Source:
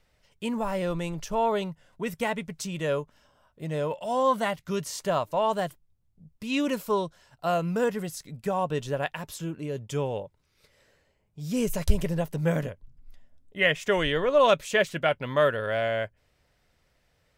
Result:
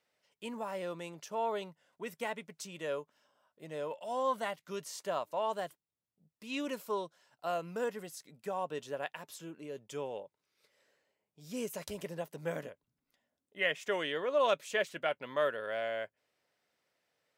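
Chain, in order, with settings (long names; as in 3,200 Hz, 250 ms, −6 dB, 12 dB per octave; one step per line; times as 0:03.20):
high-pass filter 280 Hz 12 dB per octave
level −8.5 dB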